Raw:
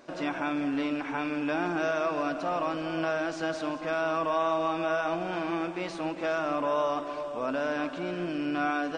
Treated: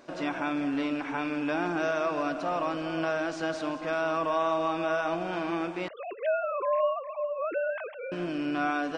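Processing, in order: 5.88–8.12 sine-wave speech

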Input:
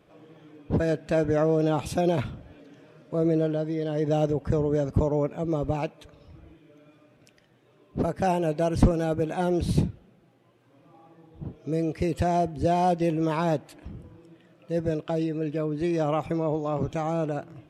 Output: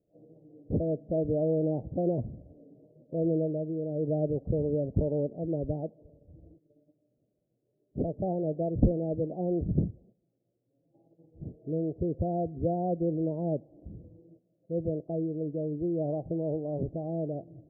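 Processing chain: gate -52 dBFS, range -12 dB; steep low-pass 660 Hz 48 dB/oct; gain -4 dB

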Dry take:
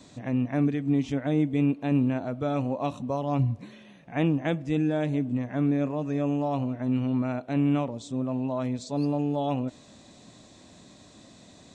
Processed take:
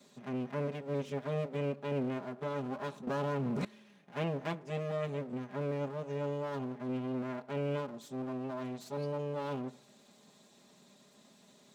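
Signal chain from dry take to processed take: minimum comb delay 4.9 ms; HPF 150 Hz 12 dB/oct; on a send at -16.5 dB: reverb RT60 0.80 s, pre-delay 3 ms; 3.07–3.65 on the sum: fast leveller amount 100%; gain -8 dB

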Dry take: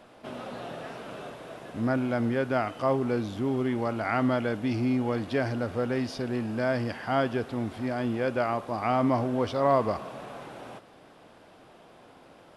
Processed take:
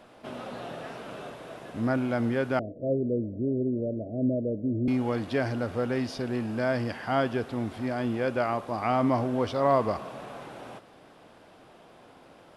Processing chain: 2.59–4.88 steep low-pass 630 Hz 96 dB/oct

